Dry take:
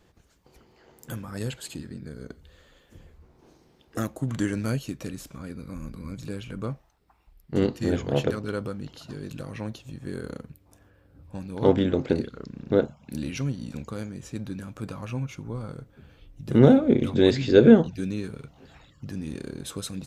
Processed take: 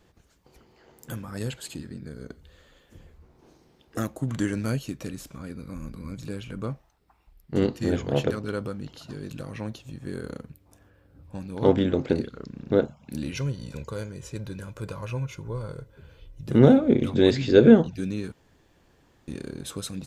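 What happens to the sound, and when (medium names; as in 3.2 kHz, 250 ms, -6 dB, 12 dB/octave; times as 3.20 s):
13.31–16.47 s: comb 2 ms, depth 60%
18.32–19.28 s: room tone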